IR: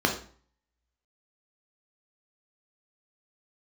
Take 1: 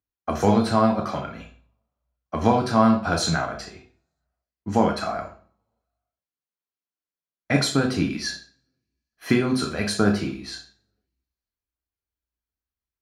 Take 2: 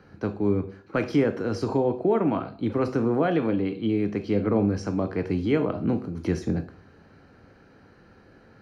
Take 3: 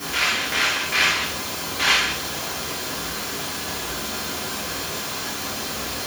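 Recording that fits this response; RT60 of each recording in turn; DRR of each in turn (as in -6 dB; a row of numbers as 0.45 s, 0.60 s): 1; 0.45 s, 0.45 s, 0.45 s; 1.5 dB, 8.0 dB, -8.0 dB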